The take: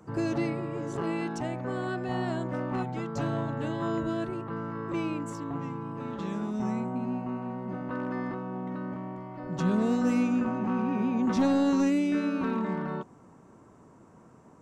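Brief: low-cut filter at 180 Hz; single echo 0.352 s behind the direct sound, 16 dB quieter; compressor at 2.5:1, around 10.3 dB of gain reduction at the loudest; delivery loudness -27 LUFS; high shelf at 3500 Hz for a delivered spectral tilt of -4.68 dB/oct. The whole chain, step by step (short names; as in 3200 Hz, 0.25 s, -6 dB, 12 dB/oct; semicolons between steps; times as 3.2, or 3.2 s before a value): HPF 180 Hz; high shelf 3500 Hz -6 dB; compressor 2.5:1, threshold -38 dBFS; echo 0.352 s -16 dB; gain +11.5 dB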